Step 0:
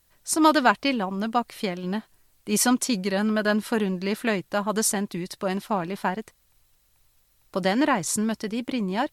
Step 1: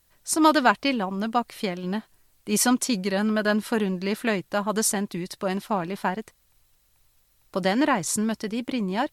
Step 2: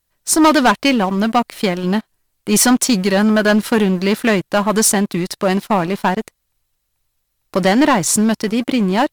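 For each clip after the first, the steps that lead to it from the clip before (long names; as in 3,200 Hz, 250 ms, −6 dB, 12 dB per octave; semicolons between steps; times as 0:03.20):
no processing that can be heard
leveller curve on the samples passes 3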